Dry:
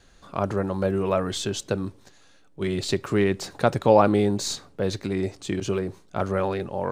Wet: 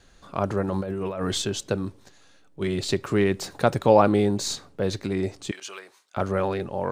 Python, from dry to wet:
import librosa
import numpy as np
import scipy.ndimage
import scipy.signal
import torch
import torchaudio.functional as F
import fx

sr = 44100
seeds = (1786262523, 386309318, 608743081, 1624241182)

y = fx.over_compress(x, sr, threshold_db=-28.0, ratio=-1.0, at=(0.68, 1.42))
y = fx.high_shelf(y, sr, hz=12000.0, db=6.0, at=(3.25, 3.96))
y = fx.highpass(y, sr, hz=1200.0, slope=12, at=(5.51, 6.17))